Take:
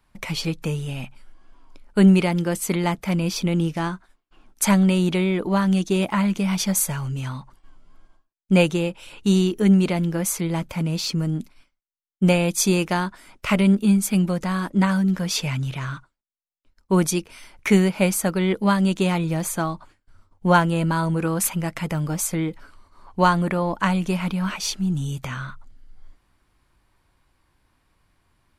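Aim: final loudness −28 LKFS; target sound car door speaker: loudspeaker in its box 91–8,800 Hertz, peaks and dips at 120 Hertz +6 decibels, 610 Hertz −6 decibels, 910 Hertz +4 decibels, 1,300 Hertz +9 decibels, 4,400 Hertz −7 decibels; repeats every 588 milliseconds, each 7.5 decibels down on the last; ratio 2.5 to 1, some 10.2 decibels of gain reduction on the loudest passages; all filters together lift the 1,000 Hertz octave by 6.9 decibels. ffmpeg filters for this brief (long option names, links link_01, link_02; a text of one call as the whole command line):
ffmpeg -i in.wav -af "equalizer=frequency=1000:width_type=o:gain=3,acompressor=threshold=-26dB:ratio=2.5,highpass=91,equalizer=frequency=120:width_type=q:width=4:gain=6,equalizer=frequency=610:width_type=q:width=4:gain=-6,equalizer=frequency=910:width_type=q:width=4:gain=4,equalizer=frequency=1300:width_type=q:width=4:gain=9,equalizer=frequency=4400:width_type=q:width=4:gain=-7,lowpass=frequency=8800:width=0.5412,lowpass=frequency=8800:width=1.3066,aecho=1:1:588|1176|1764|2352|2940:0.422|0.177|0.0744|0.0312|0.0131,volume=-1dB" out.wav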